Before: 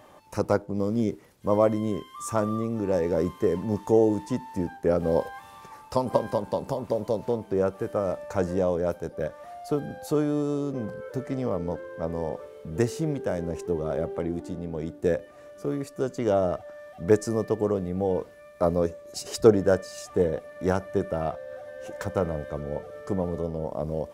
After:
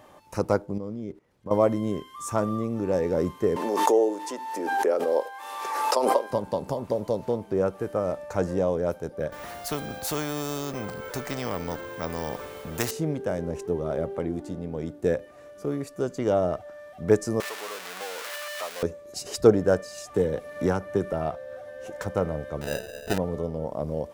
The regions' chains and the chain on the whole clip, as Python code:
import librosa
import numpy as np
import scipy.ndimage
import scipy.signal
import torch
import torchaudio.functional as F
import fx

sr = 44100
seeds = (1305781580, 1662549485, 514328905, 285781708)

y = fx.chain(x, sr, fx.lowpass(hz=2700.0, slope=6),
    fx.level_steps(step_db=17), at=(0.78, 1.51))
y = fx.chain(y, sr, fx.highpass(hz=360.0, slope=24),
    fx.pre_swell(db_per_s=34.0), at=(3.56, 6.31))
y = fx.chain(y, sr, fx.resample_bad(factor=2, down='none', up='hold'),
    fx.spectral_comp(ratio=2.0), at=(9.32, 12.91))
y = fx.chain(y, sr, fx.zero_step(step_db=-25.5),
    fx.highpass(hz=1200.0, slope=12),
    fx.band_squash(depth_pct=70), at=(17.4, 18.83))
y = fx.chain(y, sr, fx.notch(hz=660.0, q=7.9),
    fx.band_squash(depth_pct=70), at=(20.14, 21.13))
y = fx.chain(y, sr, fx.halfwave_gain(db=-3.0),
    fx.dynamic_eq(hz=450.0, q=1.1, threshold_db=-44.0, ratio=4.0, max_db=5),
    fx.sample_hold(seeds[0], rate_hz=1100.0, jitter_pct=0), at=(22.61, 23.18))